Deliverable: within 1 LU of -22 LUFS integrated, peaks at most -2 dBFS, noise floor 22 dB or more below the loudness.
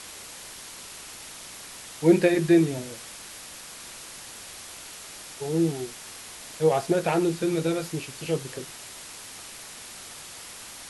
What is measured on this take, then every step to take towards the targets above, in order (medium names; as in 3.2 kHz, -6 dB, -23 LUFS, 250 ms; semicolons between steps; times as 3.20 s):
noise floor -43 dBFS; noise floor target -47 dBFS; loudness -25.0 LUFS; peak level -7.0 dBFS; loudness target -22.0 LUFS
-> noise reduction 6 dB, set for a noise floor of -43 dBFS; trim +3 dB